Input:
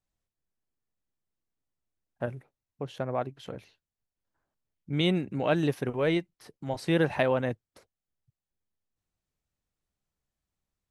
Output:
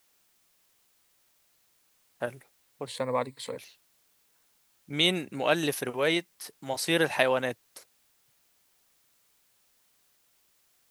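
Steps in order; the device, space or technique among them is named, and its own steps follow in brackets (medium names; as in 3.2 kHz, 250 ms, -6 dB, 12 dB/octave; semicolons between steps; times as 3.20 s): turntable without a phono preamp (RIAA curve recording; white noise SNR 35 dB); 2.86–3.57 s: rippled EQ curve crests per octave 0.97, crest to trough 13 dB; trim +2.5 dB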